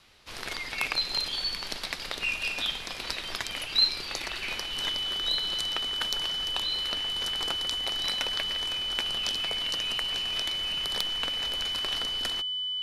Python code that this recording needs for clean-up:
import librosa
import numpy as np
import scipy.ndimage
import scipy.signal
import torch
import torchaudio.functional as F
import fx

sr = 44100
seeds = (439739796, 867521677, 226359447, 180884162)

y = fx.fix_declip(x, sr, threshold_db=-10.5)
y = fx.notch(y, sr, hz=3000.0, q=30.0)